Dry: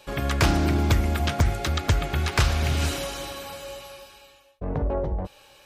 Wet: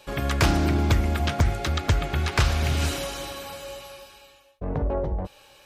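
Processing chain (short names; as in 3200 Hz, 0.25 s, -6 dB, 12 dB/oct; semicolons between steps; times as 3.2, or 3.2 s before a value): 0.68–2.46 high shelf 8200 Hz -5 dB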